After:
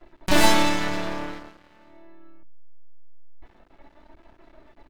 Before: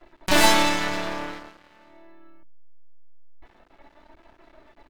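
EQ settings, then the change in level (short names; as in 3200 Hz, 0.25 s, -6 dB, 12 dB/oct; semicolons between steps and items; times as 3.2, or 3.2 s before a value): low shelf 400 Hz +6.5 dB; -2.5 dB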